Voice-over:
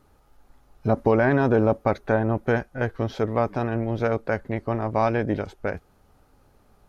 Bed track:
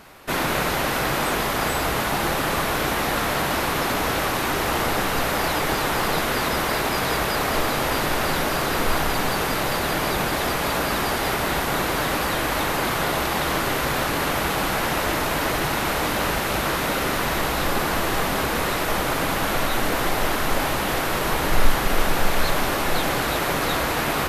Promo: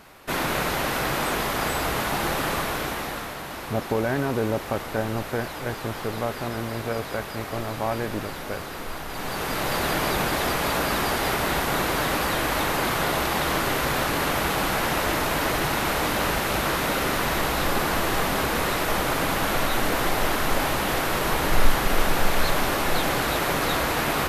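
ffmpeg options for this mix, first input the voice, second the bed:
-filter_complex "[0:a]adelay=2850,volume=-5.5dB[a];[1:a]volume=8.5dB,afade=t=out:st=2.47:d=0.89:silence=0.334965,afade=t=in:st=9.07:d=0.75:silence=0.281838[b];[a][b]amix=inputs=2:normalize=0"

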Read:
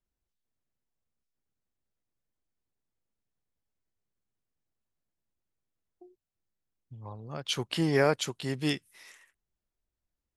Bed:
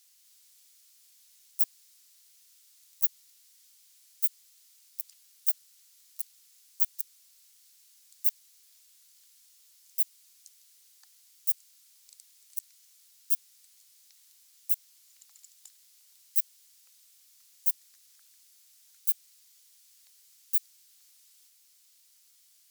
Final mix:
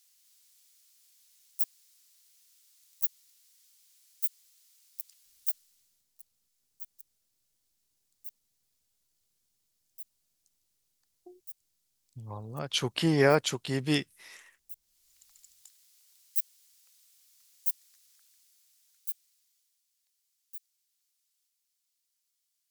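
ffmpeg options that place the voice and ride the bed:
-filter_complex "[0:a]adelay=5250,volume=2dB[a];[1:a]volume=11.5dB,afade=t=out:st=5.44:d=0.62:silence=0.188365,afade=t=in:st=14.81:d=0.46:silence=0.177828,afade=t=out:st=17.95:d=1.9:silence=0.177828[b];[a][b]amix=inputs=2:normalize=0"

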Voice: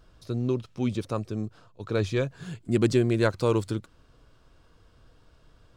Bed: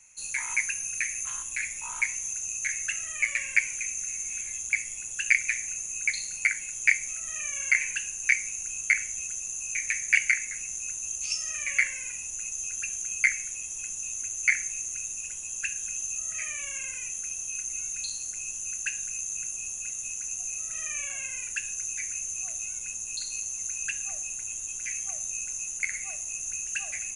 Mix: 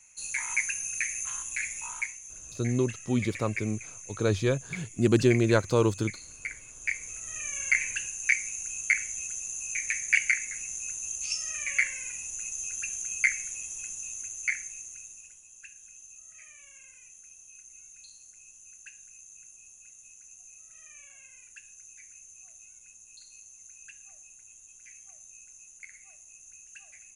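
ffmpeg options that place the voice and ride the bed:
-filter_complex "[0:a]adelay=2300,volume=0.5dB[a];[1:a]volume=9.5dB,afade=t=out:st=1.83:d=0.35:silence=0.281838,afade=t=in:st=6.75:d=0.81:silence=0.298538,afade=t=out:st=13.56:d=1.88:silence=0.16788[b];[a][b]amix=inputs=2:normalize=0"

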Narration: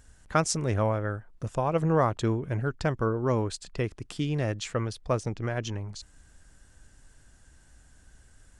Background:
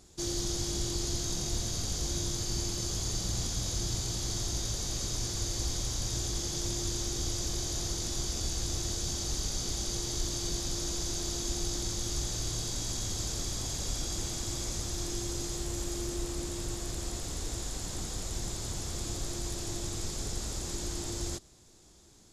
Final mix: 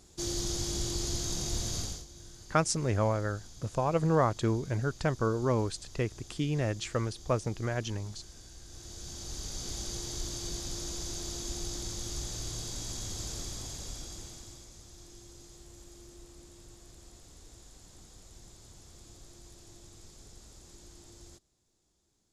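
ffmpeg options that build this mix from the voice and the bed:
-filter_complex "[0:a]adelay=2200,volume=-2dB[a];[1:a]volume=13.5dB,afade=t=out:st=1.79:d=0.26:silence=0.133352,afade=t=in:st=8.66:d=1.08:silence=0.199526,afade=t=out:st=13.36:d=1.32:silence=0.223872[b];[a][b]amix=inputs=2:normalize=0"

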